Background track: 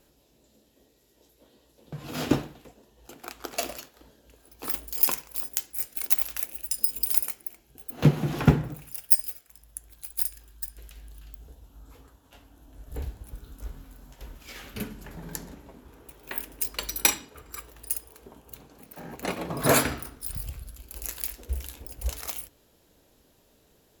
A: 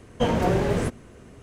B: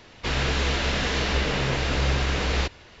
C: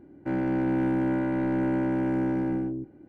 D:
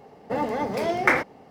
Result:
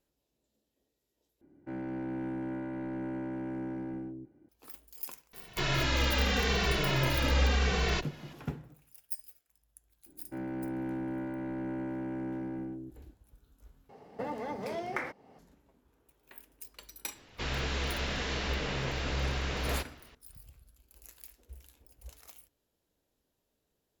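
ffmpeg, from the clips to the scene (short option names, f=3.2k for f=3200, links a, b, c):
-filter_complex "[3:a]asplit=2[a][b];[2:a]asplit=2[c][d];[0:a]volume=-18.5dB[e];[c]asplit=2[f][g];[g]adelay=2.2,afreqshift=-0.83[h];[f][h]amix=inputs=2:normalize=1[i];[4:a]acompressor=threshold=-30dB:ratio=3:attack=19:release=376:knee=1:detection=rms[j];[e]asplit=3[k][l][m];[k]atrim=end=1.414[n];[a]atrim=end=3.08,asetpts=PTS-STARTPTS,volume=-11dB[o];[l]atrim=start=4.486:end=13.894[p];[j]atrim=end=1.5,asetpts=PTS-STARTPTS,volume=-5dB[q];[m]atrim=start=15.386[r];[i]atrim=end=3,asetpts=PTS-STARTPTS,volume=-1dB,afade=t=in:d=0.004:c=hsin,afade=t=out:st=2.996:d=0.004:c=hsin,adelay=235053S[s];[b]atrim=end=3.08,asetpts=PTS-STARTPTS,volume=-10.5dB,afade=t=in:d=0.004:c=hsin,afade=t=out:st=3.076:d=0.004:c=hsin,adelay=10060[t];[d]atrim=end=3,asetpts=PTS-STARTPTS,volume=-9dB,afade=t=in:d=0.004:c=hsin,afade=t=out:st=2.996:d=0.004:c=hsin,adelay=17150[u];[n][o]acrossfade=d=0.004:c1=hsin:c2=hsin[v];[v][p]acrossfade=d=0.004:c1=hsin:c2=hsin[w];[w][q]acrossfade=d=0.004:c1=hsin:c2=hsin[x];[x][r]acrossfade=d=0.004:c1=hsin:c2=hsin[y];[y][s][t][u]amix=inputs=4:normalize=0"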